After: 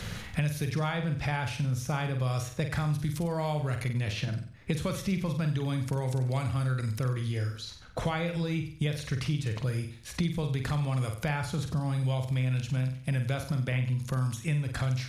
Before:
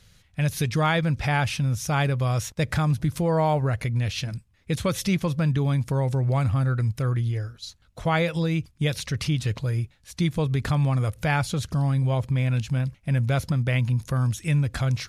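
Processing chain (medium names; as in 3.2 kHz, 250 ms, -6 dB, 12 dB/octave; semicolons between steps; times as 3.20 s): flutter echo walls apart 8 m, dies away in 0.4 s; three bands compressed up and down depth 100%; trim -8 dB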